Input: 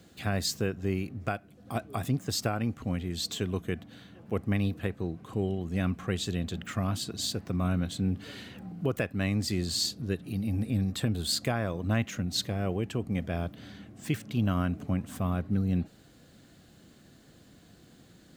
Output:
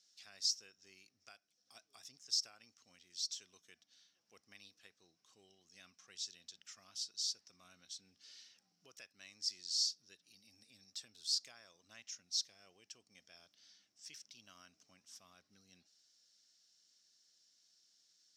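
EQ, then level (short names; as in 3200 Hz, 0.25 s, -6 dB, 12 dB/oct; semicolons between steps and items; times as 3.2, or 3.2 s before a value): band-pass 5500 Hz, Q 9.6; +6.0 dB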